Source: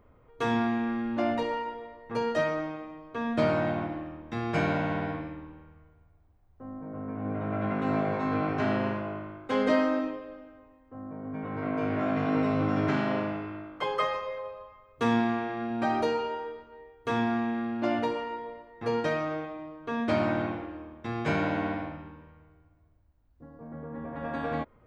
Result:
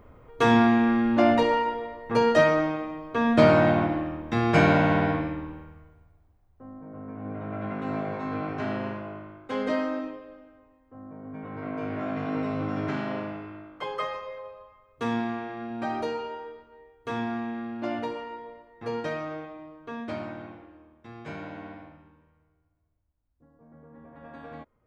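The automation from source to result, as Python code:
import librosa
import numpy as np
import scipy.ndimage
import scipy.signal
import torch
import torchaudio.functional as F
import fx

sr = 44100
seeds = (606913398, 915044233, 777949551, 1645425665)

y = fx.gain(x, sr, db=fx.line((5.53, 8.0), (6.73, -3.0), (19.79, -3.0), (20.36, -11.0)))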